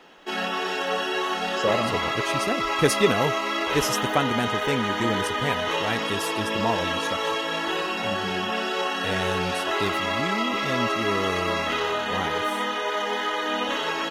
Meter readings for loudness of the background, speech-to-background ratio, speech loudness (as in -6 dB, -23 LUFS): -25.5 LUFS, -3.5 dB, -29.0 LUFS